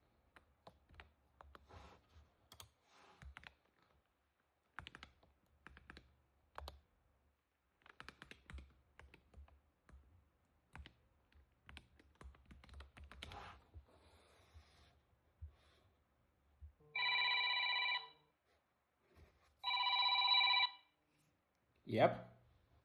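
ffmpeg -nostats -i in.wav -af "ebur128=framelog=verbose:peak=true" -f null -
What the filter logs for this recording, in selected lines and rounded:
Integrated loudness:
  I:         -35.8 LUFS
  Threshold: -52.4 LUFS
Loudness range:
  LRA:        25.9 LU
  Threshold: -64.2 LUFS
  LRA low:   -63.1 LUFS
  LRA high:  -37.3 LUFS
True peak:
  Peak:      -19.1 dBFS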